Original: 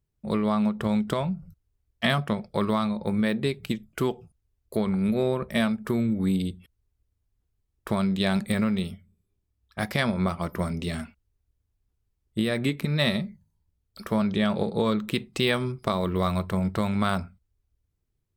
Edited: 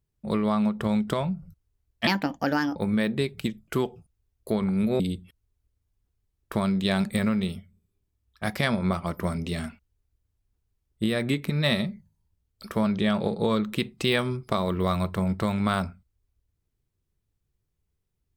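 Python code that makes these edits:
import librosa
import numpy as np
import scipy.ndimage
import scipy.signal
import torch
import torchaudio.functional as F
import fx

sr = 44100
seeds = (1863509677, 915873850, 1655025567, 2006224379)

y = fx.edit(x, sr, fx.speed_span(start_s=2.07, length_s=0.94, speed=1.37),
    fx.cut(start_s=5.25, length_s=1.1), tone=tone)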